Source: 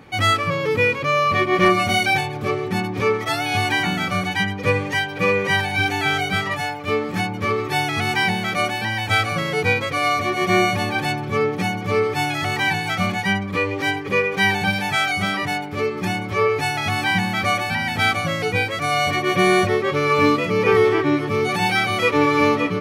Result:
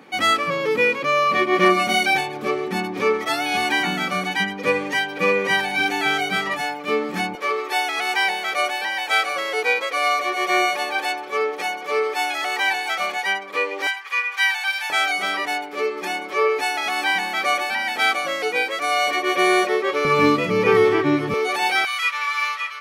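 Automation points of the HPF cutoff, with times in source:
HPF 24 dB/oct
200 Hz
from 7.35 s 420 Hz
from 13.87 s 1000 Hz
from 14.9 s 340 Hz
from 20.05 s 120 Hz
from 21.34 s 380 Hz
from 21.85 s 1200 Hz

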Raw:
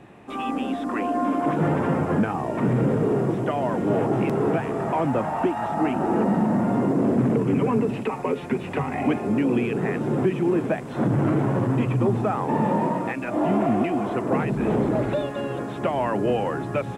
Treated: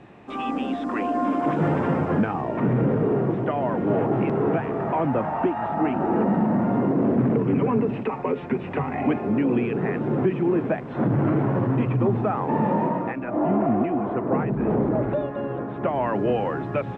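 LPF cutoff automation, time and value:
1.72 s 5600 Hz
2.74 s 2500 Hz
12.84 s 2500 Hz
13.26 s 1500 Hz
15.72 s 1500 Hz
16.15 s 2900 Hz

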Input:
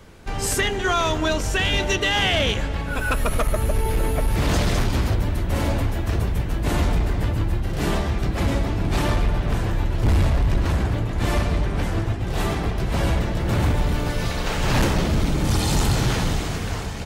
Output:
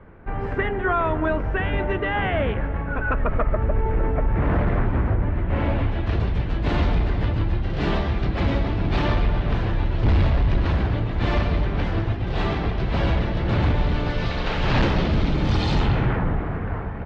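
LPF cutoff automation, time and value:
LPF 24 dB/oct
5.16 s 1900 Hz
6.19 s 4200 Hz
15.72 s 4200 Hz
16.21 s 1800 Hz

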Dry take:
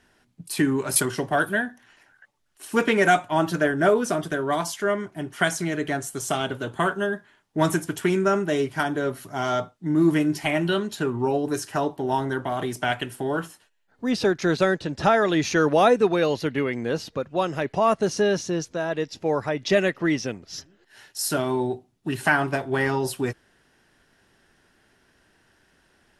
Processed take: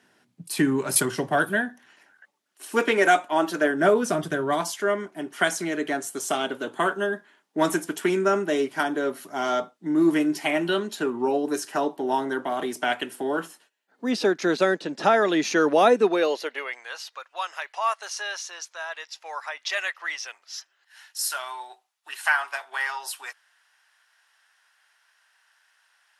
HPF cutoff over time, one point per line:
HPF 24 dB/oct
1.52 s 130 Hz
2.82 s 260 Hz
3.55 s 260 Hz
4.33 s 95 Hz
4.69 s 220 Hz
16.04 s 220 Hz
16.86 s 910 Hz

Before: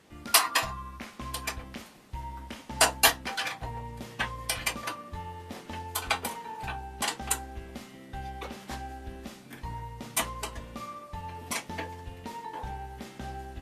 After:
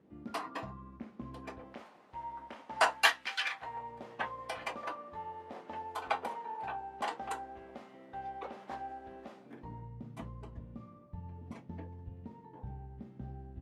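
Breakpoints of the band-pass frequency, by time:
band-pass, Q 1
1.35 s 240 Hz
1.84 s 800 Hz
2.67 s 800 Hz
3.33 s 2800 Hz
3.97 s 690 Hz
9.32 s 690 Hz
10.03 s 130 Hz

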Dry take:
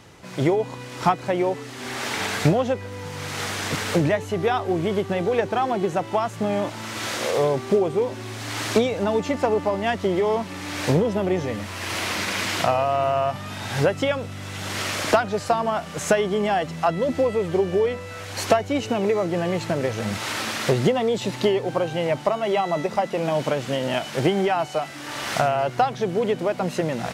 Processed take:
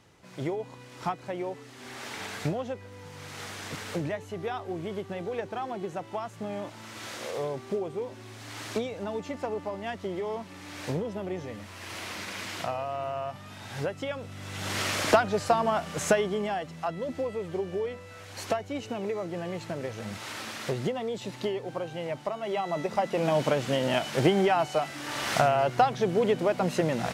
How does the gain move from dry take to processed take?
14.05 s -11.5 dB
14.69 s -2.5 dB
16.02 s -2.5 dB
16.64 s -10.5 dB
22.32 s -10.5 dB
23.26 s -2 dB

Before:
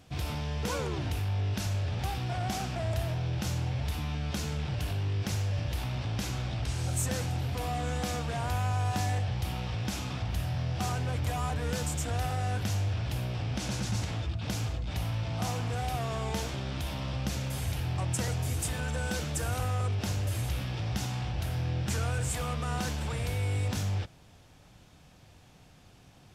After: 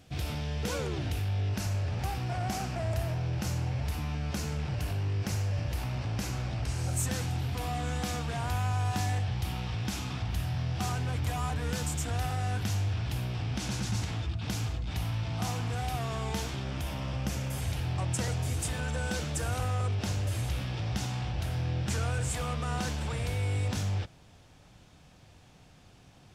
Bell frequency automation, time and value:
bell -6 dB 0.43 oct
1000 Hz
from 1.49 s 3500 Hz
from 7 s 560 Hz
from 16.64 s 4000 Hz
from 17.61 s 13000 Hz

